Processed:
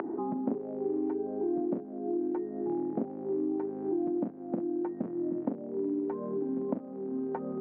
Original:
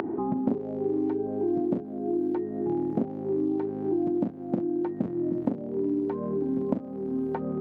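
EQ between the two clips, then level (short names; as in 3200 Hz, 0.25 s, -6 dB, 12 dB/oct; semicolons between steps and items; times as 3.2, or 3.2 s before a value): three-band isolator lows -16 dB, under 180 Hz, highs -20 dB, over 2200 Hz; -3.5 dB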